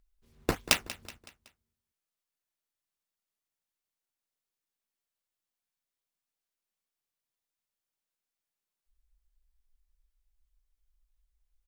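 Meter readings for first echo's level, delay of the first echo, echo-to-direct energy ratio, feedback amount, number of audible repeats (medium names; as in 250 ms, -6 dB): -16.5 dB, 187 ms, -15.5 dB, 48%, 3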